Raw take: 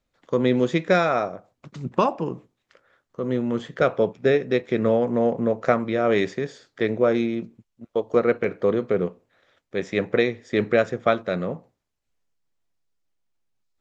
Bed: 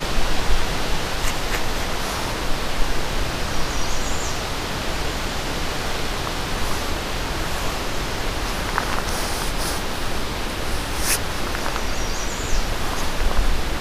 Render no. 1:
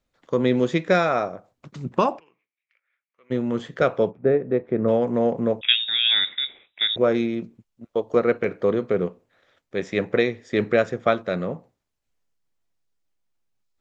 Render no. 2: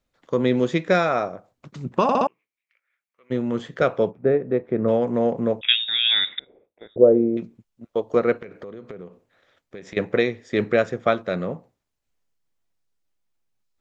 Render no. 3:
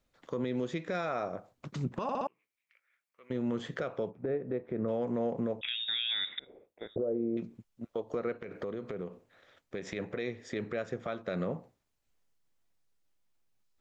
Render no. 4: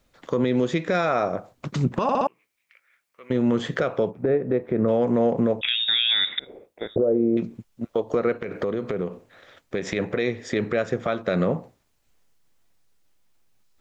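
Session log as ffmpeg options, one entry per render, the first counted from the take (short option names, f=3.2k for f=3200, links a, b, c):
-filter_complex "[0:a]asplit=3[a][b][c];[a]afade=t=out:st=2.18:d=0.02[d];[b]bandpass=f=2.3k:t=q:w=7.6,afade=t=in:st=2.18:d=0.02,afade=t=out:st=3.3:d=0.02[e];[c]afade=t=in:st=3.3:d=0.02[f];[d][e][f]amix=inputs=3:normalize=0,asplit=3[g][h][i];[g]afade=t=out:st=4.1:d=0.02[j];[h]lowpass=1.1k,afade=t=in:st=4.1:d=0.02,afade=t=out:st=4.87:d=0.02[k];[i]afade=t=in:st=4.87:d=0.02[l];[j][k][l]amix=inputs=3:normalize=0,asettb=1/sr,asplit=3[m][n][o];[m]atrim=end=5.614[p];[n]atrim=start=5.61:end=6.96,asetpts=PTS-STARTPTS,afade=t=in:d=0.004:c=qsin,afade=t=out:st=1.346:d=0.004:c=qsin,lowpass=f=3.3k:t=q:w=0.5098,lowpass=f=3.3k:t=q:w=0.6013,lowpass=f=3.3k:t=q:w=0.9,lowpass=f=3.3k:t=q:w=2.563,afreqshift=-3900[q];[o]atrim=start=6.956[r];[p][q]acrossfade=d=0.004:c1=hsin:c2=qsin[s];[s][r]acrossfade=d=0.004:c1=qsin:c2=hsin"
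-filter_complex "[0:a]asettb=1/sr,asplit=3[a][b][c];[a]atrim=end=6.394[d];[b]atrim=start=6.39:end=7.37,asetpts=PTS-STARTPTS,afade=t=in:d=0.004:c=qsin,afade=t=out:st=0.976:d=0.004:c=qsin,lowpass=f=490:t=q:w=2.4[e];[c]atrim=start=7.366[f];[d][e]acrossfade=d=0.004:c1=hsin:c2=qsin[g];[g][f]acrossfade=d=0.004:c1=qsin:c2=hsin,asettb=1/sr,asplit=3[h][i][j];[h]atrim=end=8.354[k];[i]atrim=start=8.35:end=9.97,asetpts=PTS-STARTPTS,afade=t=in:d=0.004:c=qsin,afade=t=out:st=1.616:d=0.004:c=qsin,acompressor=threshold=-33dB:ratio=16:attack=3.2:release=140:knee=1:detection=peak[l];[j]atrim=start=9.966[m];[k][l]acrossfade=d=0.004:c1=hsin:c2=qsin[n];[n][m]acrossfade=d=0.004:c1=qsin:c2=hsin,asplit=5[o][p][q][r][s];[o]atrim=end=2.092[t];[p]atrim=start=2.028:end=2.092[u];[q]atrim=start=2.028:end=2.092[v];[r]atrim=start=2.028:end=2.092[w];[s]atrim=start=2.268[x];[t][u]acrossfade=d=0.004:c1=hsin:c2=hsin[y];[y][v]acrossfade=d=0.004:c1=hsin:c2=hsin[z];[z][w]acrossfade=d=0.004:c1=hsin:c2=hsin[aa];[aa][x]acrossfade=d=0.004:c1=hsin:c2=hsin"
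-af "acompressor=threshold=-27dB:ratio=12,alimiter=limit=-24dB:level=0:latency=1:release=59"
-af "volume=11.5dB"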